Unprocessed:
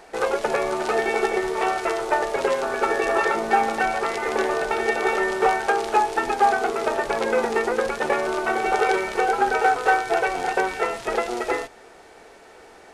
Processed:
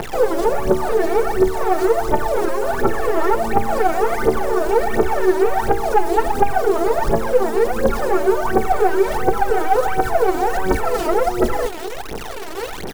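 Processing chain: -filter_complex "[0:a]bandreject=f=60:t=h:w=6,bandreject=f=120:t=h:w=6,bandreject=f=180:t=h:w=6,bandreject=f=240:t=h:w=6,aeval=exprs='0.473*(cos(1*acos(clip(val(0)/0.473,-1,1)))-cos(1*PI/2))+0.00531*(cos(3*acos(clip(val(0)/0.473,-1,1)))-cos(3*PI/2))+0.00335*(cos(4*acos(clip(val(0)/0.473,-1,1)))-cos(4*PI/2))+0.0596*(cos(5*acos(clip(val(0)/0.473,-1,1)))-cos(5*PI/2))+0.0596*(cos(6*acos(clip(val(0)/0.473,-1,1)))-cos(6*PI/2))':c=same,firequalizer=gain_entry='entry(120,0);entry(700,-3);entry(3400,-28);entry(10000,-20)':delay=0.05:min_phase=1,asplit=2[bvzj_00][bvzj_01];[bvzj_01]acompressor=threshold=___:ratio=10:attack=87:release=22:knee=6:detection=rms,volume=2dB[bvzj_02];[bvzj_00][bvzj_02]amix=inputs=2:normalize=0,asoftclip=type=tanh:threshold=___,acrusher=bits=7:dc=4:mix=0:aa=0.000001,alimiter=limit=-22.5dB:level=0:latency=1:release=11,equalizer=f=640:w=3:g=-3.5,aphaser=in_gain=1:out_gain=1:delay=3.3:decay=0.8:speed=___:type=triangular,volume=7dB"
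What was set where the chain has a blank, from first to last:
-33dB, -12.5dB, 1.4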